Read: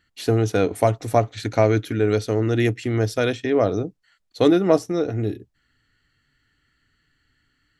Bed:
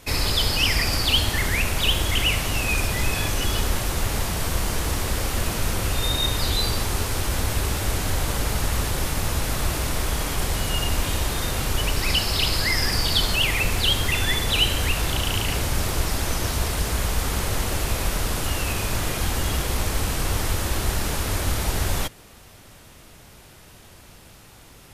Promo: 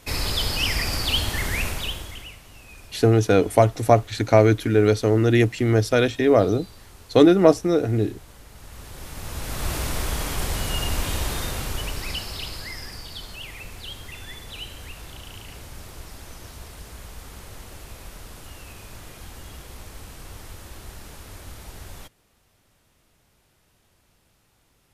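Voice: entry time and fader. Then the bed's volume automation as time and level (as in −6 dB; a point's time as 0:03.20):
2.75 s, +2.5 dB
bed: 0:01.67 −3 dB
0:02.39 −22.5 dB
0:08.49 −22.5 dB
0:09.73 −2 dB
0:11.33 −2 dB
0:13.09 −16.5 dB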